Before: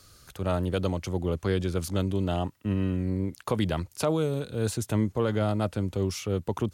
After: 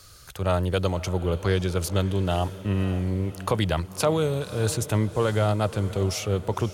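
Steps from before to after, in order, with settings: peaking EQ 250 Hz -8 dB 1.1 oct; on a send: echo that smears into a reverb 555 ms, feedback 52%, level -15 dB; on the sum: trim +5.5 dB

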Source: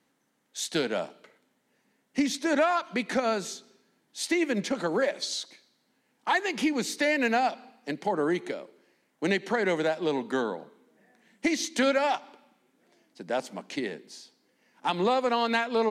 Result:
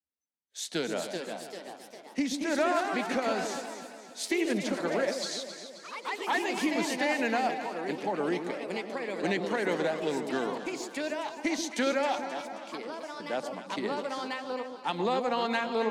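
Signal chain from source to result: spectral noise reduction 29 dB; ever faster or slower copies 466 ms, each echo +2 st, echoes 3, each echo -6 dB; echo whose repeats swap between lows and highs 133 ms, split 890 Hz, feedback 71%, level -7 dB; trim -4 dB

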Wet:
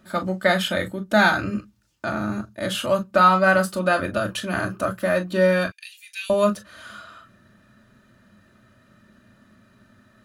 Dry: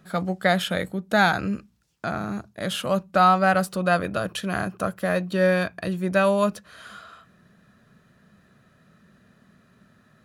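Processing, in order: 5.67–6.30 s: Chebyshev high-pass 2.4 kHz, order 4; reverberation, pre-delay 3 ms, DRR 2 dB

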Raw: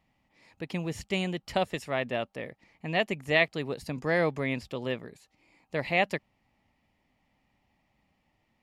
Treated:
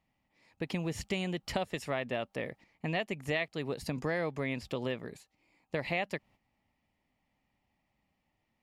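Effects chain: gate -54 dBFS, range -10 dB; compression 4:1, threshold -35 dBFS, peak gain reduction 14 dB; trim +3.5 dB

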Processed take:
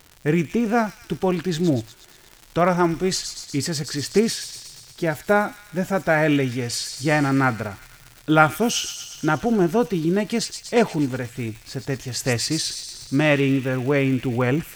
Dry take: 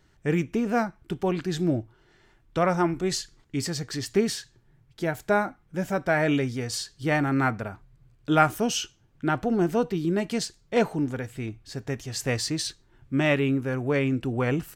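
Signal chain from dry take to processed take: crackle 170 per s -36 dBFS; feedback echo behind a high-pass 120 ms, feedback 65%, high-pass 3.6 kHz, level -5.5 dB; trim +4.5 dB

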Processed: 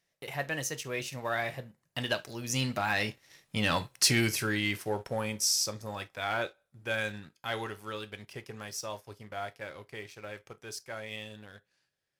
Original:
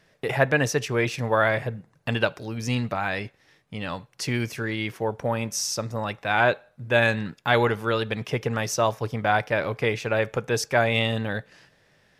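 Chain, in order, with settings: Doppler pass-by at 3.72 s, 18 m/s, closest 8.2 m; treble shelf 6.4 kHz +7.5 dB; gated-style reverb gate 90 ms falling, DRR 10 dB; waveshaping leveller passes 1; treble shelf 2.5 kHz +7.5 dB; trim -1.5 dB

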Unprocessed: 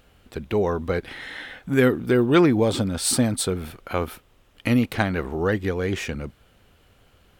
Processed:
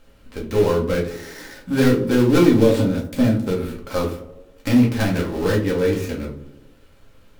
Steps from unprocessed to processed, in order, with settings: dead-time distortion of 0.15 ms; band-stop 750 Hz, Q 12; in parallel at -7.5 dB: wavefolder -16.5 dBFS; on the sum: tape echo 77 ms, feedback 72%, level -12 dB, low-pass 1.3 kHz; simulated room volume 130 m³, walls furnished, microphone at 2.1 m; trim -5 dB

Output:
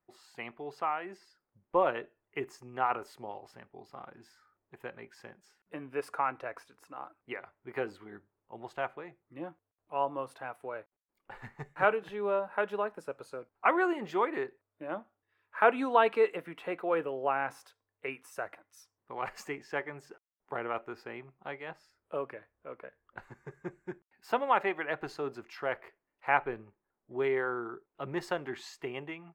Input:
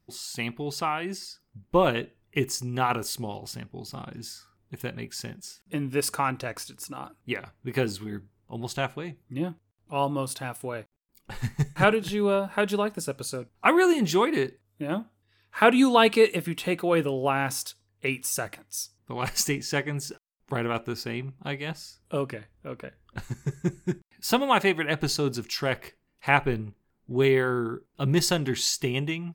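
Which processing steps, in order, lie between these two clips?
three-band isolator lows -18 dB, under 400 Hz, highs -23 dB, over 2.1 kHz; trim -3 dB

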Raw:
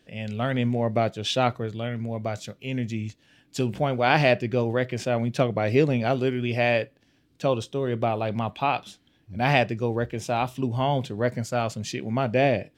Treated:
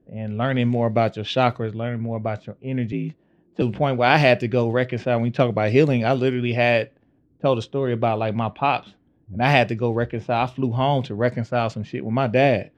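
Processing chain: level-controlled noise filter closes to 500 Hz, open at -18 dBFS; 2.92–3.62 s: frequency shift +51 Hz; trim +4 dB

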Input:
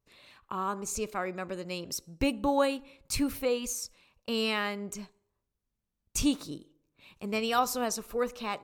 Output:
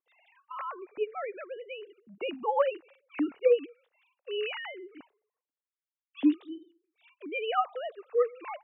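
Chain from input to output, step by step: formants replaced by sine waves

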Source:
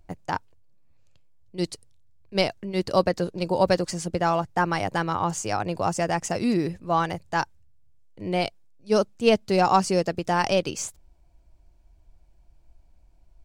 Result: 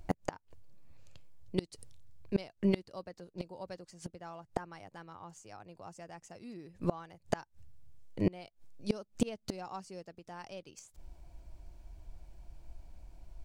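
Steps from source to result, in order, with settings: inverted gate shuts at -22 dBFS, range -30 dB; trim +6 dB

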